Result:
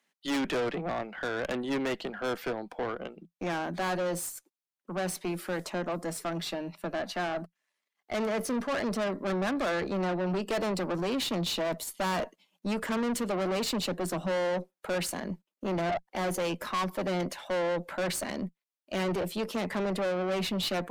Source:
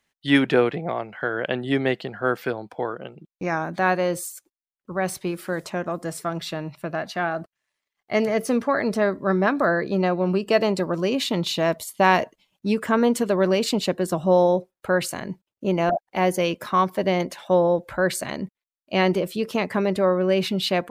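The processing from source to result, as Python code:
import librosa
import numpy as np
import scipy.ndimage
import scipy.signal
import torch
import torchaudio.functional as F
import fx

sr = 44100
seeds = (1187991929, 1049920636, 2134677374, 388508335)

y = scipy.signal.sosfilt(scipy.signal.cheby1(6, 1.0, 170.0, 'highpass', fs=sr, output='sos'), x)
y = fx.tube_stage(y, sr, drive_db=27.0, bias=0.4)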